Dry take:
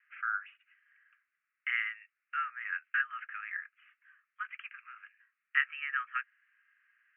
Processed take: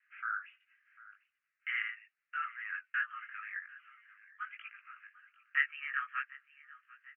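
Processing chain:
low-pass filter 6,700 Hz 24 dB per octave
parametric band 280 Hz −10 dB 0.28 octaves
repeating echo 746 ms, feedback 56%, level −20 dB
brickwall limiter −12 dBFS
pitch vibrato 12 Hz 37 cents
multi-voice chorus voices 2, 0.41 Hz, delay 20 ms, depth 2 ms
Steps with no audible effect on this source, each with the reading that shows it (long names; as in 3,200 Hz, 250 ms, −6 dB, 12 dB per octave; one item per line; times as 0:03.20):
low-pass filter 6,700 Hz: nothing at its input above 3,000 Hz
parametric band 280 Hz: nothing at its input below 1,100 Hz
brickwall limiter −12 dBFS: peak of its input −14.0 dBFS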